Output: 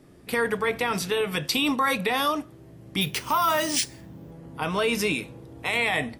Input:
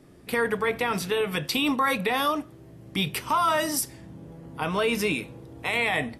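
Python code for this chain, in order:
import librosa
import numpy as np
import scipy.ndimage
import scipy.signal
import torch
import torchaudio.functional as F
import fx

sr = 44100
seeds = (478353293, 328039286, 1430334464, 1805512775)

y = fx.dynamic_eq(x, sr, hz=6200.0, q=0.8, threshold_db=-43.0, ratio=4.0, max_db=4)
y = fx.resample_bad(y, sr, factor=3, down='none', up='hold', at=(3.01, 4.31))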